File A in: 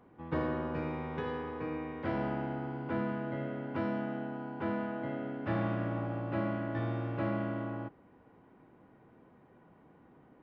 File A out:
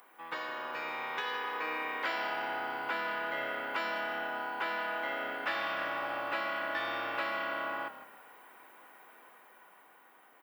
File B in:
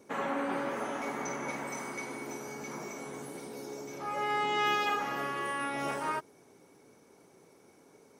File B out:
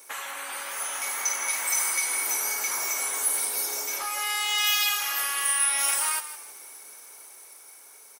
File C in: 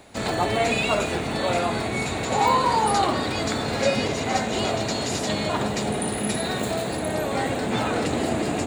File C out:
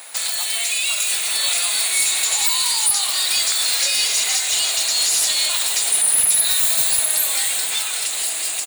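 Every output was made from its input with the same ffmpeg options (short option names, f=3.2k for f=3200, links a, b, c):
-filter_complex "[0:a]highpass=1.1k,highshelf=f=5.4k:g=10,acrossover=split=2800[a][b];[a]acompressor=threshold=-46dB:ratio=16[c];[b]alimiter=limit=-22.5dB:level=0:latency=1:release=126[d];[c][d]amix=inputs=2:normalize=0,dynaudnorm=f=140:g=17:m=4.5dB,aexciter=amount=3:drive=2.4:freq=9.1k,aeval=exprs='0.335*sin(PI/2*2.51*val(0)/0.335)':c=same,aeval=exprs='0.355*(cos(1*acos(clip(val(0)/0.355,-1,1)))-cos(1*PI/2))+0.00282*(cos(5*acos(clip(val(0)/0.355,-1,1)))-cos(5*PI/2))':c=same,asplit=2[e][f];[f]asplit=3[g][h][i];[g]adelay=159,afreqshift=-34,volume=-13dB[j];[h]adelay=318,afreqshift=-68,volume=-22.4dB[k];[i]adelay=477,afreqshift=-102,volume=-31.7dB[l];[j][k][l]amix=inputs=3:normalize=0[m];[e][m]amix=inputs=2:normalize=0,volume=-2.5dB"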